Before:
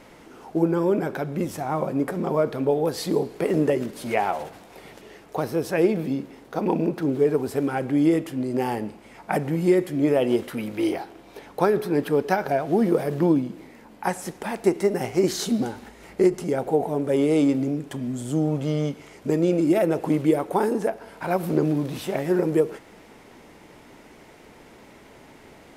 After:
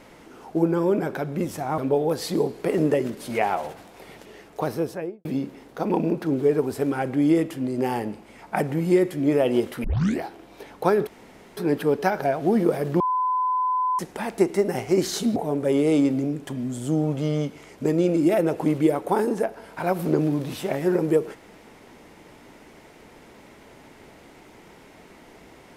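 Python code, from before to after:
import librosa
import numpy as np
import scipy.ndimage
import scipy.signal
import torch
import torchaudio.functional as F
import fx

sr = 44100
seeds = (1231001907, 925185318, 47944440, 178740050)

y = fx.studio_fade_out(x, sr, start_s=5.46, length_s=0.55)
y = fx.edit(y, sr, fx.cut(start_s=1.78, length_s=0.76),
    fx.tape_start(start_s=10.6, length_s=0.38),
    fx.insert_room_tone(at_s=11.83, length_s=0.5),
    fx.bleep(start_s=13.26, length_s=0.99, hz=1010.0, db=-20.0),
    fx.cut(start_s=15.62, length_s=1.18), tone=tone)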